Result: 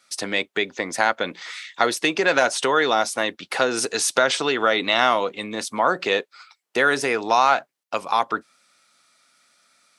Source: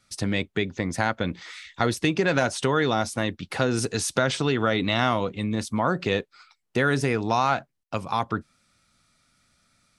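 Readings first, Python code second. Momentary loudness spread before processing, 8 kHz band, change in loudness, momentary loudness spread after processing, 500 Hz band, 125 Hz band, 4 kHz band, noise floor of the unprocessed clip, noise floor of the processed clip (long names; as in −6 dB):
8 LU, +6.0 dB, +4.0 dB, 10 LU, +3.5 dB, −14.5 dB, +6.0 dB, −75 dBFS, −77 dBFS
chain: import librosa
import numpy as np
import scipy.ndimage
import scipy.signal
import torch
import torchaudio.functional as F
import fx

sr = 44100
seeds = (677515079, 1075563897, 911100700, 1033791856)

y = scipy.signal.sosfilt(scipy.signal.butter(2, 450.0, 'highpass', fs=sr, output='sos'), x)
y = y * librosa.db_to_amplitude(6.0)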